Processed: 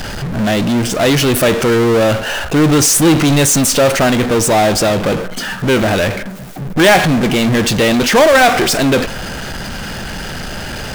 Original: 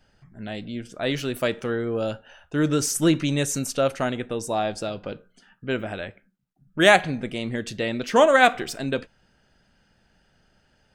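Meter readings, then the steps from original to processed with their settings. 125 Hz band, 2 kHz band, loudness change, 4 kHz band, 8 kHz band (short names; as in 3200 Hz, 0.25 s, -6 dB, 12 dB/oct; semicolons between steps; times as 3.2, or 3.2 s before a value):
+14.5 dB, +9.5 dB, +11.0 dB, +13.0 dB, +16.0 dB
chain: power-law curve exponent 0.35; band-limited delay 0.188 s, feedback 61%, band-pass 1000 Hz, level -20.5 dB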